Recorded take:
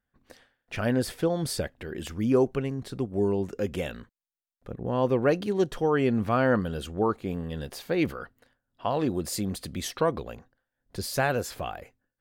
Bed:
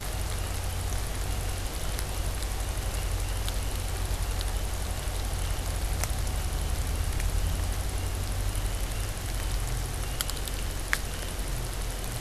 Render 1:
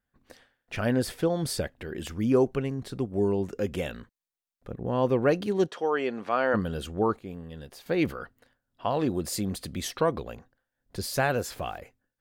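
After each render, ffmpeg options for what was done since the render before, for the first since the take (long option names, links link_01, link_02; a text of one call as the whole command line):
ffmpeg -i in.wav -filter_complex "[0:a]asplit=3[link_01][link_02][link_03];[link_01]afade=type=out:start_time=5.66:duration=0.02[link_04];[link_02]highpass=420,lowpass=6500,afade=type=in:start_time=5.66:duration=0.02,afade=type=out:start_time=6.53:duration=0.02[link_05];[link_03]afade=type=in:start_time=6.53:duration=0.02[link_06];[link_04][link_05][link_06]amix=inputs=3:normalize=0,asettb=1/sr,asplit=3[link_07][link_08][link_09];[link_07]atrim=end=11.364[link_10];[link_08]atrim=start=11.36:end=11.78,asetpts=PTS-STARTPTS,afade=type=in:duration=0.004:curve=qsin,afade=type=out:start_time=0.416:duration=0.004:curve=qsin,aeval=exprs='val(0)*gte(abs(val(0)),0.00237)':channel_layout=same[link_11];[link_09]atrim=start=11.776[link_12];[link_10][link_11]acrossfade=duration=0.004:curve1=hsin:curve2=qsin[link_13];[link_13][link_12]acrossfade=duration=0.004:curve1=qsin:curve2=hsin,asplit=3[link_14][link_15][link_16];[link_14]atrim=end=7.192[link_17];[link_15]atrim=start=7.188:end=7.862,asetpts=PTS-STARTPTS,volume=-7.5dB[link_18];[link_16]atrim=start=7.858[link_19];[link_17][link_18]acrossfade=duration=0.004:curve1=hsin:curve2=hsin[link_20];[link_20][link_19]acrossfade=duration=0.004:curve1=hsin:curve2=hsin" out.wav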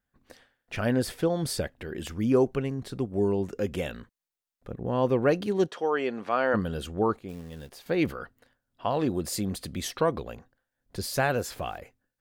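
ffmpeg -i in.wav -filter_complex "[0:a]asplit=3[link_01][link_02][link_03];[link_01]afade=type=out:start_time=7.28:duration=0.02[link_04];[link_02]acrusher=bits=4:mode=log:mix=0:aa=0.000001,afade=type=in:start_time=7.28:duration=0.02,afade=type=out:start_time=7.77:duration=0.02[link_05];[link_03]afade=type=in:start_time=7.77:duration=0.02[link_06];[link_04][link_05][link_06]amix=inputs=3:normalize=0" out.wav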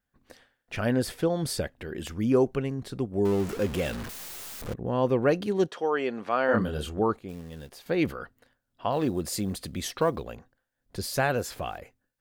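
ffmpeg -i in.wav -filter_complex "[0:a]asettb=1/sr,asplit=3[link_01][link_02][link_03];[link_01]atrim=end=3.254[link_04];[link_02]atrim=start=3.25:end=4.74,asetpts=PTS-STARTPTS,afade=type=in:duration=0.004:curve=qsin,afade=type=out:start_time=1.486:duration=0.004:curve=qsin,aeval=exprs='val(0)+0.5*0.0251*sgn(val(0))':channel_layout=same[link_05];[link_03]atrim=start=4.736[link_06];[link_04][link_05]acrossfade=duration=0.004:curve1=hsin:curve2=qsin[link_07];[link_07][link_06]acrossfade=duration=0.004:curve1=qsin:curve2=hsin,asettb=1/sr,asplit=3[link_08][link_09][link_10];[link_08]atrim=end=6.464[link_11];[link_09]atrim=start=6.46:end=7,asetpts=PTS-STARTPTS,afade=type=in:duration=0.004:curve=qsin,afade=type=out:start_time=0.536:duration=0.004:curve=qsin,asplit=2[link_12][link_13];[link_13]adelay=27,volume=-3.5dB[link_14];[link_12][link_14]amix=inputs=2:normalize=0,atrim=end_sample=23814[link_15];[link_10]atrim=start=6.996[link_16];[link_11][link_15]acrossfade=duration=0.004:curve1=hsin:curve2=qsin[link_17];[link_17][link_16]acrossfade=duration=0.004:curve1=qsin:curve2=hsin,asettb=1/sr,asplit=3[link_18][link_19][link_20];[link_18]atrim=end=8.924[link_21];[link_19]atrim=start=8.92:end=10.32,asetpts=PTS-STARTPTS,afade=type=in:duration=0.004:curve=qsin,afade=type=out:start_time=1.396:duration=0.004:curve=qsin,acrusher=bits=9:mode=log:mix=0:aa=0.000001[link_22];[link_20]atrim=start=10.316[link_23];[link_21][link_22]acrossfade=duration=0.004:curve1=hsin:curve2=qsin[link_24];[link_24][link_23]acrossfade=duration=0.004:curve1=qsin:curve2=hsin" out.wav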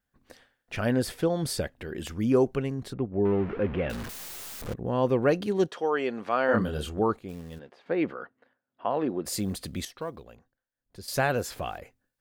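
ffmpeg -i in.wav -filter_complex "[0:a]asettb=1/sr,asplit=3[link_01][link_02][link_03];[link_01]atrim=end=2.934[link_04];[link_02]atrim=start=2.93:end=3.9,asetpts=PTS-STARTPTS,afade=type=in:duration=0.004:curve=qsin,afade=type=out:start_time=0.966:duration=0.004:curve=qsin,lowpass=frequency=2500:width=0.5412,lowpass=frequency=2500:width=1.3066[link_05];[link_03]atrim=start=3.896[link_06];[link_04][link_05]acrossfade=duration=0.004:curve1=hsin:curve2=qsin[link_07];[link_07][link_06]acrossfade=duration=0.004:curve1=qsin:curve2=hsin,asplit=3[link_08][link_09][link_10];[link_08]afade=type=out:start_time=7.58:duration=0.02[link_11];[link_09]highpass=230,lowpass=2100,afade=type=in:start_time=7.58:duration=0.02,afade=type=out:start_time=9.25:duration=0.02[link_12];[link_10]afade=type=in:start_time=9.25:duration=0.02[link_13];[link_11][link_12][link_13]amix=inputs=3:normalize=0,asplit=3[link_14][link_15][link_16];[link_14]atrim=end=9.852[link_17];[link_15]atrim=start=9.848:end=11.082,asetpts=PTS-STARTPTS,volume=-10.5dB[link_18];[link_16]atrim=start=11.078[link_19];[link_17][link_18]acrossfade=duration=0.004:curve1=hsin:curve2=hsin[link_20];[link_20][link_19]acrossfade=duration=0.004:curve1=hsin:curve2=hsin" out.wav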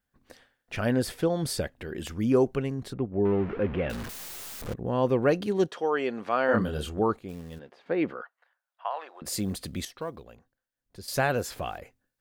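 ffmpeg -i in.wav -filter_complex "[0:a]asettb=1/sr,asplit=3[link_01][link_02][link_03];[link_01]atrim=end=8.214[link_04];[link_02]atrim=start=8.21:end=9.22,asetpts=PTS-STARTPTS,afade=type=in:duration=0.004:curve=qsin,afade=type=out:start_time=1.006:duration=0.004:curve=qsin,highpass=frequency=750:width=0.5412,highpass=frequency=750:width=1.3066[link_05];[link_03]atrim=start=9.216[link_06];[link_04][link_05]acrossfade=duration=0.004:curve1=hsin:curve2=qsin[link_07];[link_07][link_06]acrossfade=duration=0.004:curve1=qsin:curve2=hsin" out.wav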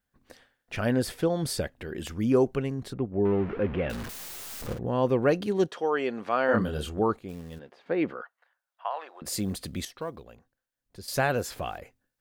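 ffmpeg -i in.wav -filter_complex "[0:a]asettb=1/sr,asplit=3[link_01][link_02][link_03];[link_01]atrim=end=4.454[link_04];[link_02]atrim=start=4.45:end=4.89,asetpts=PTS-STARTPTS,afade=type=in:duration=0.004:curve=qsin,afade=type=out:start_time=0.436:duration=0.004:curve=qsin,asplit=2[link_05][link_06];[link_06]adelay=50,volume=-6dB[link_07];[link_05][link_07]amix=inputs=2:normalize=0,atrim=end_sample=19404[link_08];[link_03]atrim=start=4.886[link_09];[link_04][link_08]acrossfade=duration=0.004:curve1=hsin:curve2=qsin[link_10];[link_10][link_09]acrossfade=duration=0.004:curve1=qsin:curve2=hsin" out.wav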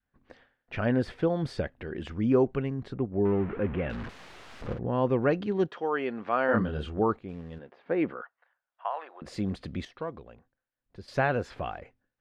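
ffmpeg -i in.wav -af "lowpass=2600,adynamicequalizer=threshold=0.0112:dfrequency=530:dqfactor=1.2:tfrequency=530:tqfactor=1.2:attack=5:release=100:ratio=0.375:range=2:mode=cutabove:tftype=bell" out.wav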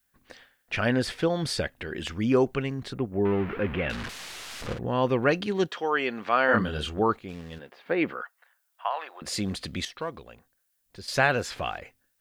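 ffmpeg -i in.wav -af "crystalizer=i=8:c=0" out.wav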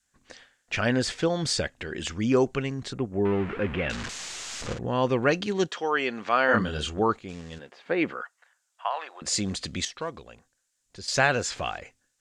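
ffmpeg -i in.wav -af "lowpass=frequency=7200:width_type=q:width=3" out.wav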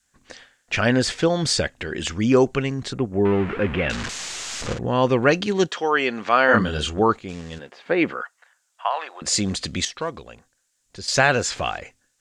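ffmpeg -i in.wav -af "volume=5.5dB,alimiter=limit=-3dB:level=0:latency=1" out.wav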